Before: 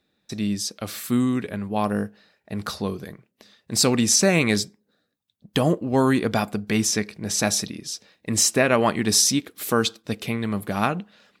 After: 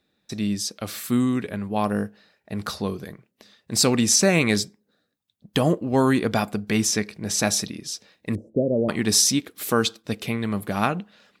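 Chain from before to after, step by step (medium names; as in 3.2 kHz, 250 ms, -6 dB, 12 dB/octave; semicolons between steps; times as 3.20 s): 8.35–8.89 s: elliptic low-pass 560 Hz, stop band 60 dB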